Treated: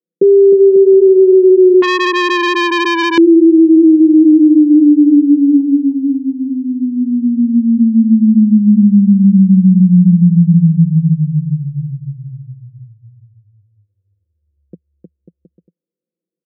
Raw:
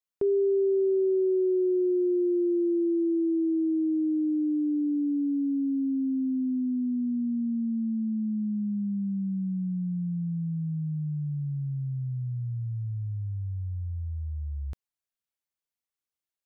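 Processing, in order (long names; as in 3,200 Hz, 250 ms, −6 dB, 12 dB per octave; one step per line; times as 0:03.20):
elliptic band-pass filter 170–490 Hz, stop band 40 dB
comb filter 5.8 ms, depth 71%
0:05.60–0:06.52: downward compressor 4 to 1, threshold −35 dBFS, peak gain reduction 4 dB
on a send: bouncing-ball delay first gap 310 ms, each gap 0.75×, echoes 5
on the sum: boost into a limiter +19 dB
0:01.82–0:03.18: saturating transformer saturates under 1,800 Hz
level −1 dB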